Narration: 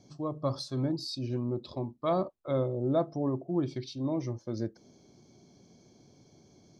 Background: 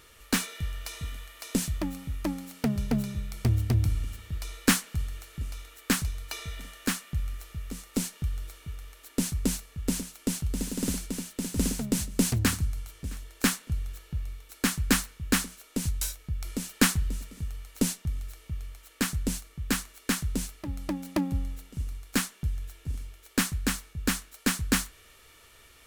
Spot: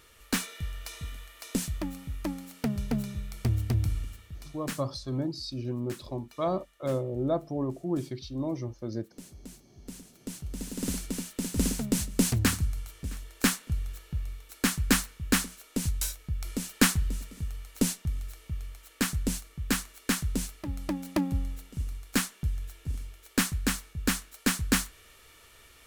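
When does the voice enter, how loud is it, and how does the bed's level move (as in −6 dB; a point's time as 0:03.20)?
4.35 s, −0.5 dB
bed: 0:03.98 −2.5 dB
0:04.98 −19 dB
0:09.62 −19 dB
0:11.05 0 dB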